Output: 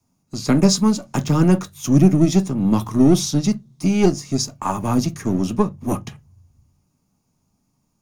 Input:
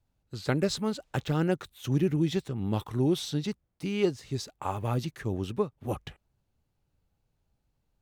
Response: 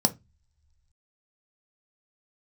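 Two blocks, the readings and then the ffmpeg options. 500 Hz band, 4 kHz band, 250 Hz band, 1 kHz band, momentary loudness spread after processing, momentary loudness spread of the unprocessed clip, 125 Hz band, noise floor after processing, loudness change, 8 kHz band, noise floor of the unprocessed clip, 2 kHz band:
+8.0 dB, +9.5 dB, +14.0 dB, +10.5 dB, 9 LU, 9 LU, +10.5 dB, -69 dBFS, +12.0 dB, +17.0 dB, -78 dBFS, +5.5 dB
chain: -filter_complex "[0:a]highshelf=f=2.2k:g=8.5[a];[1:a]atrim=start_sample=2205,asetrate=52920,aresample=44100[b];[a][b]afir=irnorm=-1:irlink=0,acrossover=split=300|750|2500[c][d][e][f];[d]aeval=exprs='max(val(0),0)':c=same[g];[c][g][e][f]amix=inputs=4:normalize=0,volume=-2.5dB"

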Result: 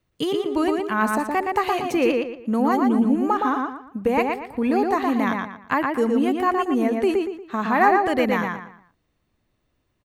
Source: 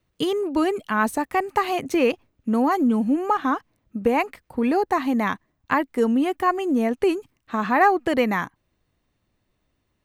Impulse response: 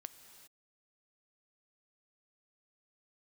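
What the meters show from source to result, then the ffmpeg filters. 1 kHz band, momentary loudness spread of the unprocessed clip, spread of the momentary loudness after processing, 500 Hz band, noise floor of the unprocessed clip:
+1.0 dB, 8 LU, 7 LU, +1.0 dB, -73 dBFS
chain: -filter_complex "[0:a]asplit=2[a][b];[b]adelay=117,lowpass=f=4.2k:p=1,volume=-3dB,asplit=2[c][d];[d]adelay=117,lowpass=f=4.2k:p=1,volume=0.33,asplit=2[e][f];[f]adelay=117,lowpass=f=4.2k:p=1,volume=0.33,asplit=2[g][h];[h]adelay=117,lowpass=f=4.2k:p=1,volume=0.33[i];[a][c][e][g][i]amix=inputs=5:normalize=0,volume=-1dB"

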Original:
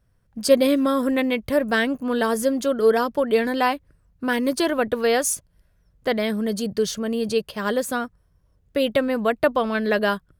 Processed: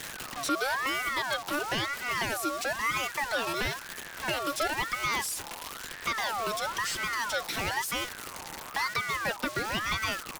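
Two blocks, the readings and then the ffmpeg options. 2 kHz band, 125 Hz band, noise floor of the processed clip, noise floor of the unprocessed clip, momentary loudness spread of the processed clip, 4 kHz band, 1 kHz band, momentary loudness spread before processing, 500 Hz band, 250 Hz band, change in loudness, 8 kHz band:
-2.0 dB, -4.5 dB, -43 dBFS, -63 dBFS, 7 LU, -1.5 dB, -4.0 dB, 8 LU, -16.5 dB, -17.0 dB, -8.5 dB, -4.0 dB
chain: -filter_complex "[0:a]aeval=exprs='val(0)+0.5*0.0447*sgn(val(0))':c=same,acrossover=split=2600[a][b];[b]acompressor=threshold=-35dB:ratio=4:attack=1:release=60[c];[a][c]amix=inputs=2:normalize=0,highshelf=f=3.4k:g=9.5,aecho=1:1:5.9:0.37,acrossover=split=340|3000[d][e][f];[e]acompressor=threshold=-27dB:ratio=4[g];[d][g][f]amix=inputs=3:normalize=0,acrossover=split=300|1000[h][i][j];[j]aeval=exprs='(mod(7.94*val(0)+1,2)-1)/7.94':c=same[k];[h][i][k]amix=inputs=3:normalize=0,asplit=2[l][m];[m]highpass=f=720:p=1,volume=11dB,asoftclip=type=tanh:threshold=-9.5dB[n];[l][n]amix=inputs=2:normalize=0,lowpass=f=6.3k:p=1,volume=-6dB,aeval=exprs='val(0)*sin(2*PI*1300*n/s+1300*0.35/1*sin(2*PI*1*n/s))':c=same,volume=-5.5dB"

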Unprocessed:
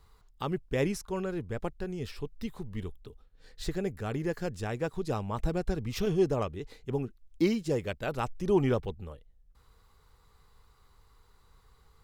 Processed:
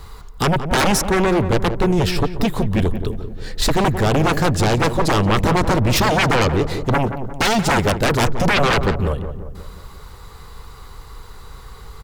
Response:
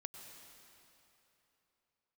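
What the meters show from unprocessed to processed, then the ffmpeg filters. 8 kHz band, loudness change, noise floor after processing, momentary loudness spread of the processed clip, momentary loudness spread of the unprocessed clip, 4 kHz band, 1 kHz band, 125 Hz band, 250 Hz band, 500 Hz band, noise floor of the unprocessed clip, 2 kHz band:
+21.5 dB, +14.5 dB, -39 dBFS, 8 LU, 12 LU, +22.0 dB, +20.0 dB, +15.5 dB, +12.5 dB, +11.5 dB, -63 dBFS, +21.0 dB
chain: -filter_complex "[0:a]aeval=exprs='0.224*sin(PI/2*8.91*val(0)/0.224)':c=same,asplit=2[a][b];[b]adelay=177,lowpass=f=1.2k:p=1,volume=-8.5dB,asplit=2[c][d];[d]adelay=177,lowpass=f=1.2k:p=1,volume=0.55,asplit=2[e][f];[f]adelay=177,lowpass=f=1.2k:p=1,volume=0.55,asplit=2[g][h];[h]adelay=177,lowpass=f=1.2k:p=1,volume=0.55,asplit=2[i][j];[j]adelay=177,lowpass=f=1.2k:p=1,volume=0.55,asplit=2[k][l];[l]adelay=177,lowpass=f=1.2k:p=1,volume=0.55,asplit=2[m][n];[n]adelay=177,lowpass=f=1.2k:p=1,volume=0.55[o];[c][e][g][i][k][m][o]amix=inputs=7:normalize=0[p];[a][p]amix=inputs=2:normalize=0"

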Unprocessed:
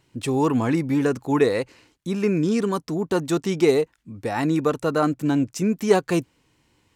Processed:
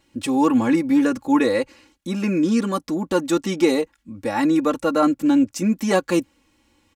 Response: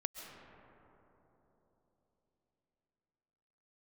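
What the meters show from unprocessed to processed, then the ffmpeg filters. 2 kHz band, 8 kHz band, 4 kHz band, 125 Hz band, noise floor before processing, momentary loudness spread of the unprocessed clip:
+2.0 dB, +2.5 dB, +2.5 dB, -4.5 dB, -67 dBFS, 8 LU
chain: -af "aecho=1:1:3.6:0.86"

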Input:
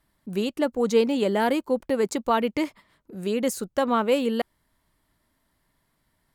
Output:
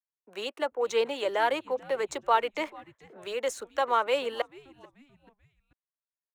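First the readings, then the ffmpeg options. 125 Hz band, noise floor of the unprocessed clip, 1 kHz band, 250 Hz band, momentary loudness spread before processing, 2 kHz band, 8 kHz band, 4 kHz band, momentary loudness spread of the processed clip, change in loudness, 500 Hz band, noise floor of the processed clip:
under -15 dB, -73 dBFS, 0.0 dB, -17.5 dB, 10 LU, 0.0 dB, -6.0 dB, -1.5 dB, 11 LU, -4.5 dB, -5.0 dB, under -85 dBFS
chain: -filter_complex "[0:a]highpass=250,bandreject=f=4.8k:w=6.1,agate=range=-33dB:threshold=-52dB:ratio=3:detection=peak,acrossover=split=480 7500:gain=0.0631 1 0.141[a][b][c];[a][b][c]amix=inputs=3:normalize=0,aphaser=in_gain=1:out_gain=1:delay=2.2:decay=0.26:speed=1.9:type=sinusoidal,acrossover=split=340|480|2500[d][e][f][g];[g]aeval=exprs='sgn(val(0))*max(abs(val(0))-0.00158,0)':c=same[h];[d][e][f][h]amix=inputs=4:normalize=0,asplit=4[i][j][k][l];[j]adelay=437,afreqshift=-140,volume=-23dB[m];[k]adelay=874,afreqshift=-280,volume=-30.7dB[n];[l]adelay=1311,afreqshift=-420,volume=-38.5dB[o];[i][m][n][o]amix=inputs=4:normalize=0"

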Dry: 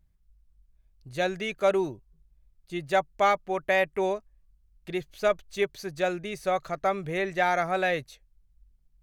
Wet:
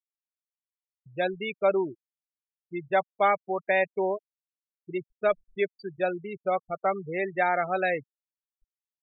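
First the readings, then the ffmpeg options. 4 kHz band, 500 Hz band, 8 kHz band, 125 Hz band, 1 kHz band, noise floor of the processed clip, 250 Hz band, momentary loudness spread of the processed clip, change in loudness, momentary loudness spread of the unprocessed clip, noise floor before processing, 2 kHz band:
-6.5 dB, 0.0 dB, under -30 dB, -4.0 dB, 0.0 dB, under -85 dBFS, -1.0 dB, 11 LU, -0.5 dB, 10 LU, -66 dBFS, -0.5 dB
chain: -filter_complex "[0:a]afftfilt=real='re*gte(hypot(re,im),0.0562)':imag='im*gte(hypot(re,im),0.0562)':win_size=1024:overlap=0.75,acrossover=split=170|1400|4100[a][b][c][d];[a]acompressor=threshold=-54dB:ratio=6[e];[e][b][c][d]amix=inputs=4:normalize=0"

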